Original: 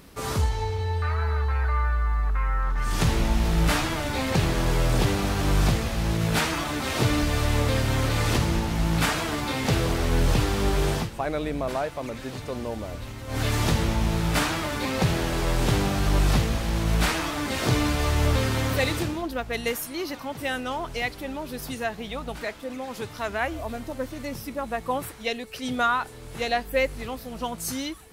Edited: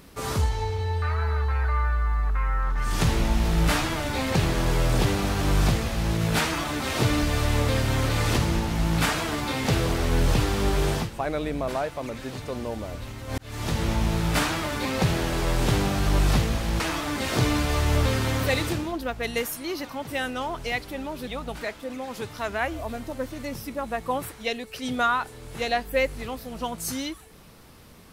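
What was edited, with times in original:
0:13.38–0:13.92: fade in
0:16.80–0:17.10: remove
0:21.57–0:22.07: remove

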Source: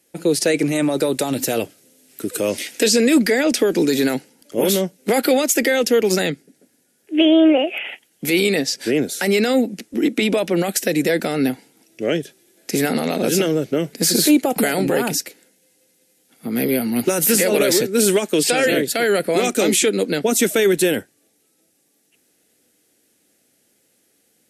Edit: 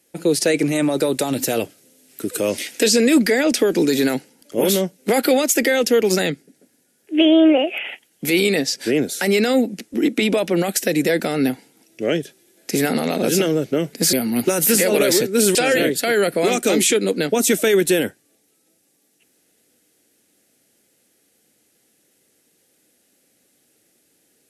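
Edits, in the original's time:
0:14.13–0:16.73: remove
0:18.15–0:18.47: remove

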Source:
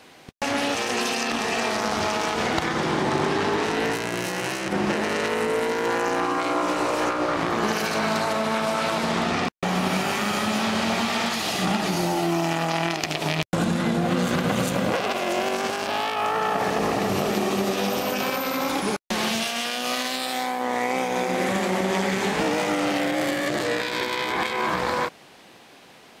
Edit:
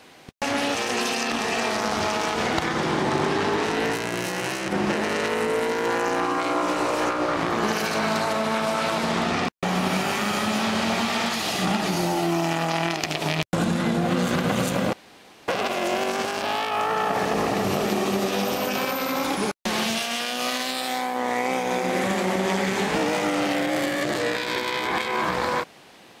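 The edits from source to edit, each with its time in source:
0:14.93: splice in room tone 0.55 s

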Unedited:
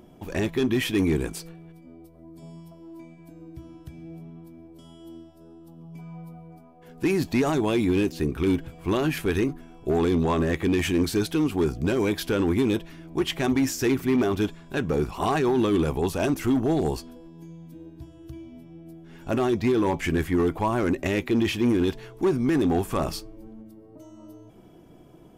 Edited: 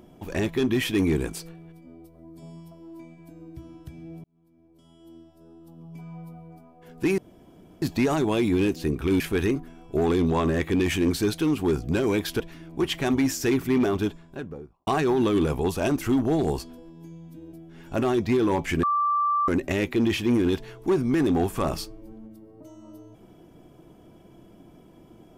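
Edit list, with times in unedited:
0:04.24–0:05.83: fade in
0:07.18: splice in room tone 0.64 s
0:08.56–0:09.13: remove
0:12.33–0:12.78: remove
0:14.21–0:15.25: fade out and dull
0:17.91–0:18.88: remove
0:20.18–0:20.83: beep over 1,170 Hz −20 dBFS

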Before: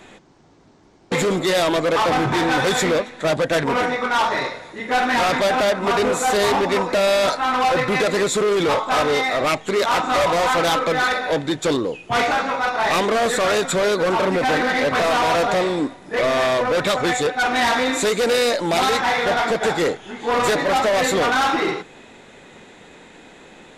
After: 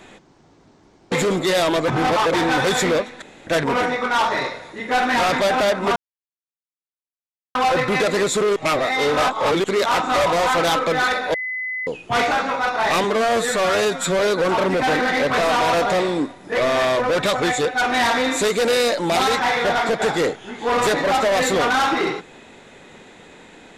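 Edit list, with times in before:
0:01.88–0:02.34: reverse
0:03.22–0:03.47: fill with room tone
0:05.96–0:07.55: silence
0:08.56–0:09.64: reverse
0:11.34–0:11.87: beep over 2,020 Hz −23.5 dBFS
0:13.04–0:13.81: time-stretch 1.5×

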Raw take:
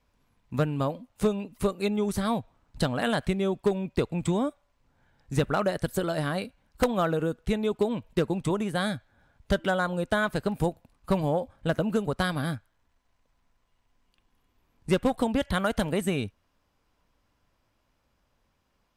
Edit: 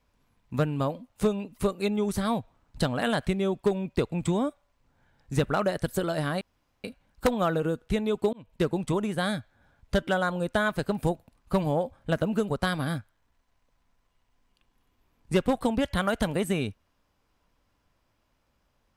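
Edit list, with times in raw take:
0:06.41: splice in room tone 0.43 s
0:07.90–0:08.22: fade in

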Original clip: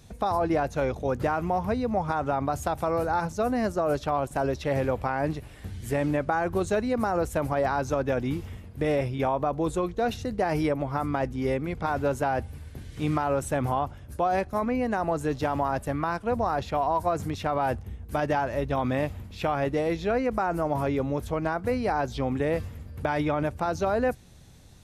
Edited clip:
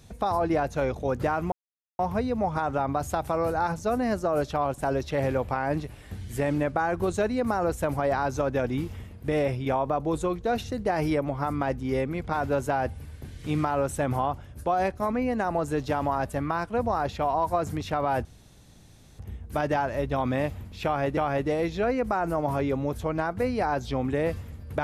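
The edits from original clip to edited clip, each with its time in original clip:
0:01.52: splice in silence 0.47 s
0:17.78: splice in room tone 0.94 s
0:19.44–0:19.76: repeat, 2 plays

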